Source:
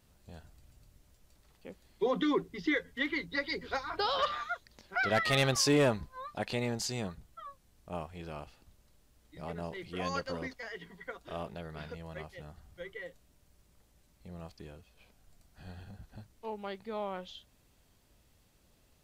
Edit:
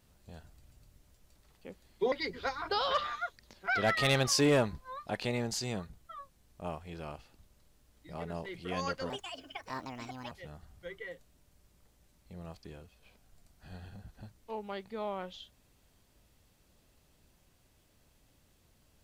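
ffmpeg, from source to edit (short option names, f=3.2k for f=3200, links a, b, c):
-filter_complex "[0:a]asplit=4[a][b][c][d];[a]atrim=end=2.122[e];[b]atrim=start=3.398:end=10.384[f];[c]atrim=start=10.38:end=12.26,asetpts=PTS-STARTPTS,asetrate=68355,aresample=44100,atrim=end_sample=53489,asetpts=PTS-STARTPTS[g];[d]atrim=start=12.256[h];[e][f]acrossfade=d=0.004:c1=hsin:c2=hsin[i];[i][g]acrossfade=d=0.004:c1=hsin:c2=hsin[j];[j][h]acrossfade=d=0.004:c1=hsin:c2=hsin"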